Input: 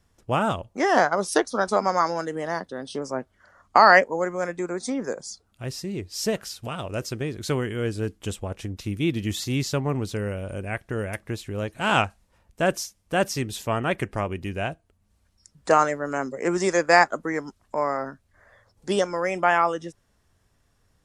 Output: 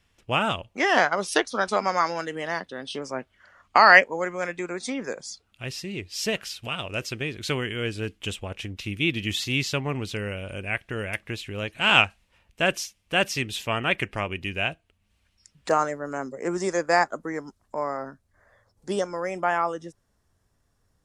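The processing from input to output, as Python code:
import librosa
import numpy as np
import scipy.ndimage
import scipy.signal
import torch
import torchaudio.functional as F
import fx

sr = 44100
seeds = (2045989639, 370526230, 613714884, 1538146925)

y = fx.peak_eq(x, sr, hz=2700.0, db=fx.steps((0.0, 13.5), (15.69, -4.0)), octaves=1.2)
y = y * 10.0 ** (-3.5 / 20.0)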